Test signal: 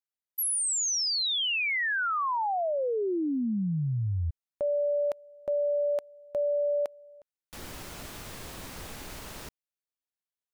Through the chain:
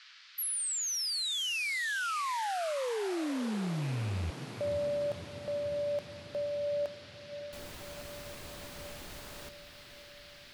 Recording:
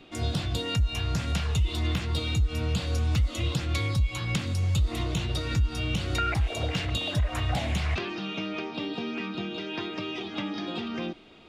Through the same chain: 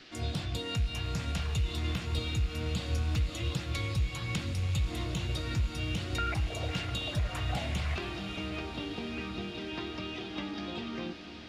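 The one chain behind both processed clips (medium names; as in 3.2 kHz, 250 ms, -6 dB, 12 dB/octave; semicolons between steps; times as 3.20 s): rattle on loud lows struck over -26 dBFS, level -33 dBFS; band noise 1.3–4.9 kHz -50 dBFS; echo that smears into a reverb 578 ms, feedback 71%, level -12 dB; trim -5.5 dB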